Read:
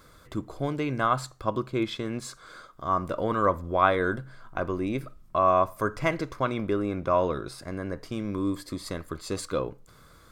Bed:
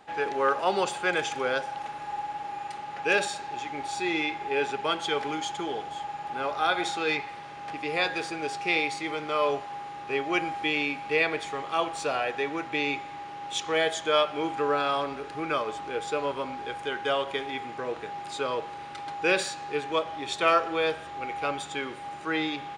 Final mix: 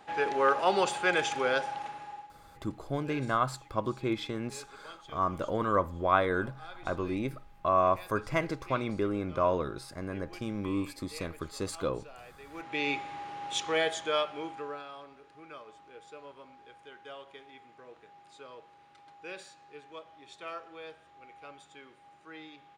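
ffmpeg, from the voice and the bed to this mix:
-filter_complex "[0:a]adelay=2300,volume=0.668[s0];[1:a]volume=10,afade=t=out:st=1.65:d=0.67:silence=0.0841395,afade=t=in:st=12.45:d=0.47:silence=0.0944061,afade=t=out:st=13.56:d=1.31:silence=0.133352[s1];[s0][s1]amix=inputs=2:normalize=0"

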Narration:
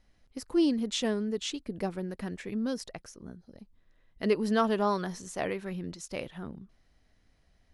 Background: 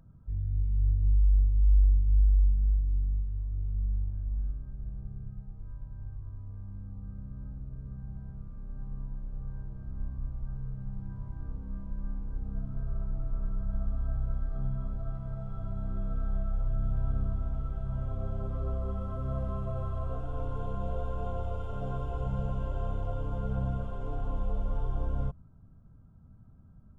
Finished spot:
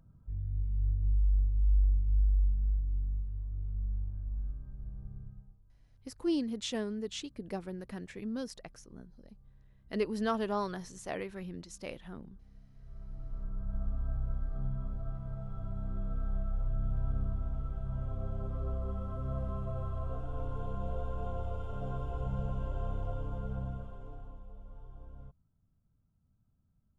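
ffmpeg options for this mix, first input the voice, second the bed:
-filter_complex "[0:a]adelay=5700,volume=0.531[s0];[1:a]volume=5.01,afade=t=out:st=5.18:d=0.43:silence=0.141254,afade=t=in:st=12.77:d=1.09:silence=0.11885,afade=t=out:st=23.08:d=1.34:silence=0.16788[s1];[s0][s1]amix=inputs=2:normalize=0"

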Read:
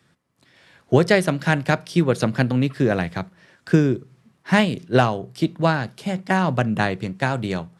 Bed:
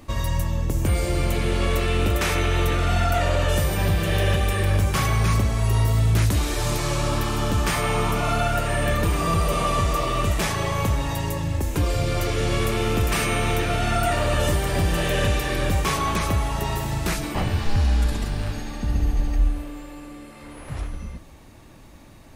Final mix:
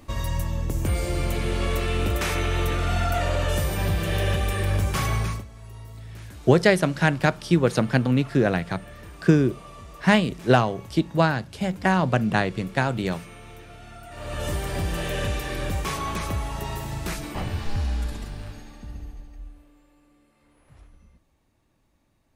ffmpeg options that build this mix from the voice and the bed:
-filter_complex "[0:a]adelay=5550,volume=0.891[s0];[1:a]volume=4.47,afade=t=out:st=5.15:d=0.3:silence=0.11885,afade=t=in:st=14.1:d=0.46:silence=0.158489,afade=t=out:st=17.69:d=1.59:silence=0.16788[s1];[s0][s1]amix=inputs=2:normalize=0"

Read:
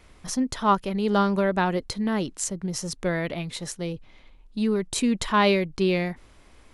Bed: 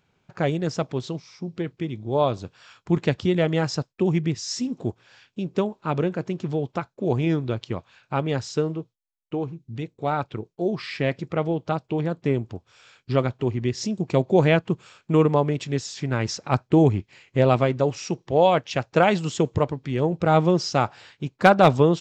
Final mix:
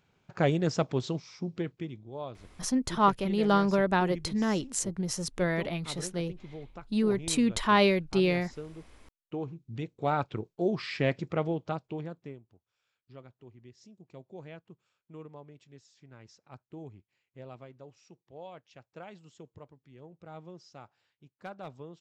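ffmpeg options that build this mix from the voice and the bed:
-filter_complex "[0:a]adelay=2350,volume=0.75[s0];[1:a]volume=4.22,afade=t=out:st=1.38:d=0.73:silence=0.158489,afade=t=in:st=8.67:d=1.41:silence=0.188365,afade=t=out:st=11.15:d=1.25:silence=0.0595662[s1];[s0][s1]amix=inputs=2:normalize=0"

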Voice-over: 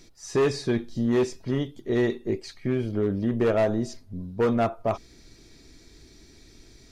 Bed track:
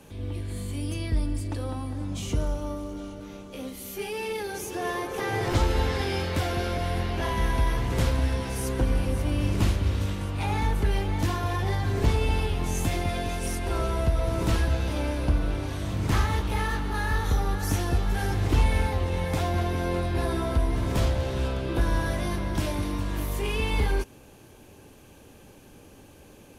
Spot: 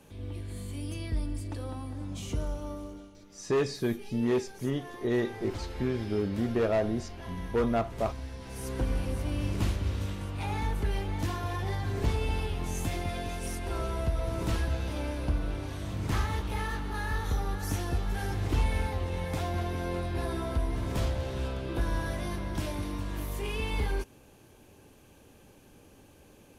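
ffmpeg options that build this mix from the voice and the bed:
-filter_complex "[0:a]adelay=3150,volume=0.596[s0];[1:a]volume=1.58,afade=t=out:st=2.85:d=0.26:silence=0.334965,afade=t=in:st=8.38:d=0.41:silence=0.334965[s1];[s0][s1]amix=inputs=2:normalize=0"

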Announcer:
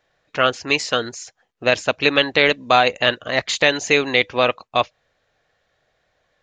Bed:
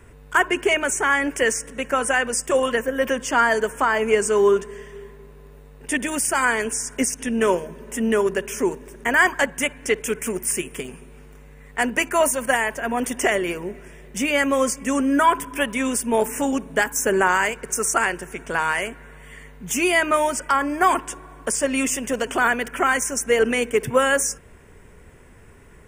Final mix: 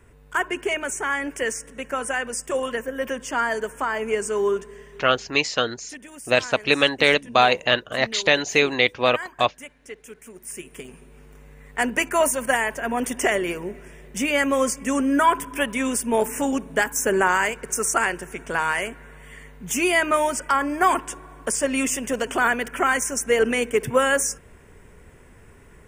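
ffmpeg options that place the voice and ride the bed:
-filter_complex "[0:a]adelay=4650,volume=0.794[s0];[1:a]volume=3.55,afade=t=out:st=5.15:d=0.3:silence=0.251189,afade=t=in:st=10.34:d=1.15:silence=0.149624[s1];[s0][s1]amix=inputs=2:normalize=0"

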